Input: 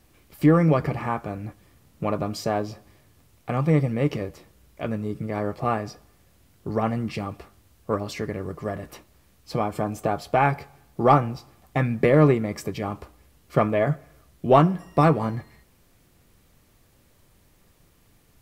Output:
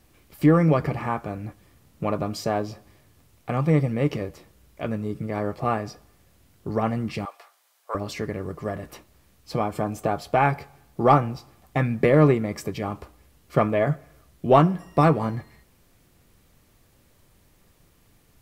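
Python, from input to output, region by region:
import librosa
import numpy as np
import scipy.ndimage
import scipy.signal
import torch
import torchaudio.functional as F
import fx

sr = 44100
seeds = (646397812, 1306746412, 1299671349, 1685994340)

y = fx.chain(x, sr, fx.highpass(hz=650.0, slope=24),
    fx.notch(hz=2700.0, q=21.0), at=(7.25, 7.95))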